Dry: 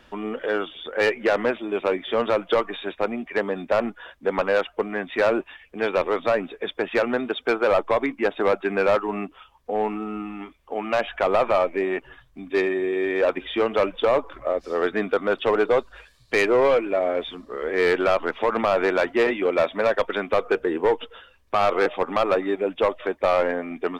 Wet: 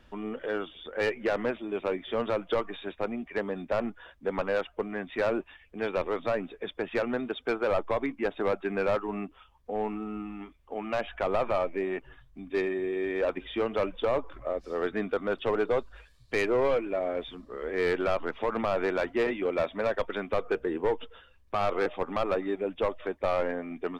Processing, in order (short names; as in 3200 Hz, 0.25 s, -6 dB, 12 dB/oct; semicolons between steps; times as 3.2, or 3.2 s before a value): low shelf 180 Hz +10.5 dB; gain -8.5 dB